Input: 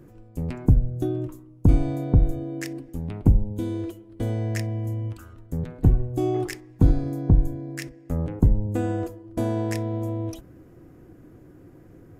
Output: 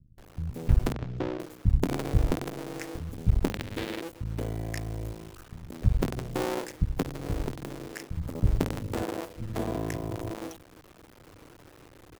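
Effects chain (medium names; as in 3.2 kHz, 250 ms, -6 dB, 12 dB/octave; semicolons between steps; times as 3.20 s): cycle switcher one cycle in 2, muted; 3.33–3.83 s: high-order bell 2.7 kHz +8.5 dB; 6.83–7.44 s: compression 6:1, threshold -23 dBFS, peak gain reduction 10.5 dB; bit crusher 8-bit; 0.74–1.22 s: distance through air 180 m; bands offset in time lows, highs 180 ms, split 180 Hz; trim -2 dB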